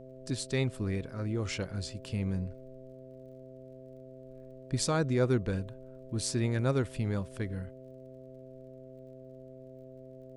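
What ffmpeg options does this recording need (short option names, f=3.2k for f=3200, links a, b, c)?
-af "adeclick=t=4,bandreject=f=130.2:t=h:w=4,bandreject=f=260.4:t=h:w=4,bandreject=f=390.6:t=h:w=4,bandreject=f=520.8:t=h:w=4,bandreject=f=651:t=h:w=4,agate=range=-21dB:threshold=-42dB"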